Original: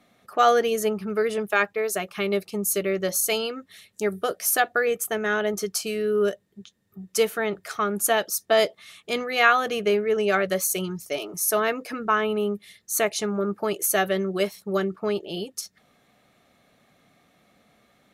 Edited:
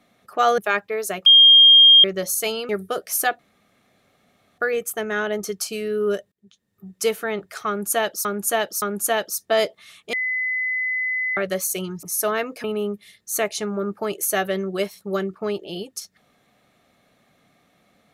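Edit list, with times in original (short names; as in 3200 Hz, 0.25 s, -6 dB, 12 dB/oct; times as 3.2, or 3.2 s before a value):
0.58–1.44 cut
2.12–2.9 bleep 3220 Hz -7 dBFS
3.55–4.02 cut
4.72 insert room tone 1.19 s
6.46–7.15 fade in equal-power
7.82–8.39 loop, 3 plays
9.13–10.37 bleep 2020 Hz -21 dBFS
11.03–11.32 cut
11.93–12.25 cut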